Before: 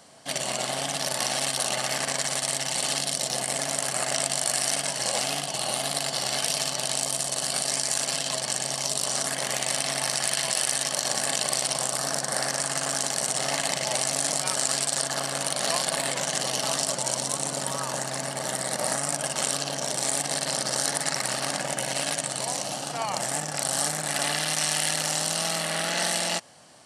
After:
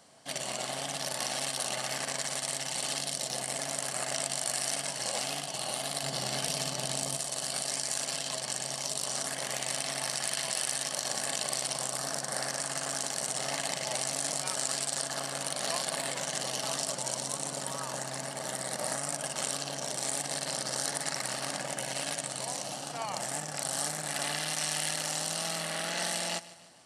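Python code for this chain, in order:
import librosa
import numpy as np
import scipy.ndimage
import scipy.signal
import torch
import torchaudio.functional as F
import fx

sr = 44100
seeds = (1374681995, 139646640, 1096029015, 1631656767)

y = fx.low_shelf(x, sr, hz=350.0, db=9.5, at=(6.03, 7.17))
y = fx.echo_feedback(y, sr, ms=150, feedback_pct=49, wet_db=-18.0)
y = F.gain(torch.from_numpy(y), -6.5).numpy()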